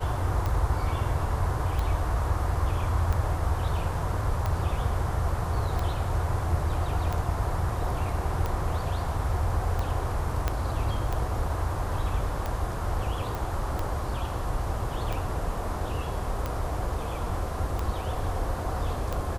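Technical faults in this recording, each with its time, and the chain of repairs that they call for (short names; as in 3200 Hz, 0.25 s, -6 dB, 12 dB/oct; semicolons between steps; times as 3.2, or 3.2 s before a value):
tick 45 rpm -17 dBFS
10.48 pop -12 dBFS
13.35 pop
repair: de-click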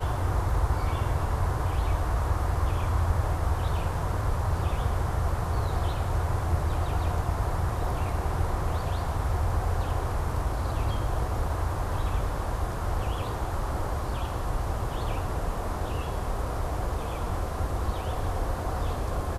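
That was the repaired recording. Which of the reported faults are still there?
10.48 pop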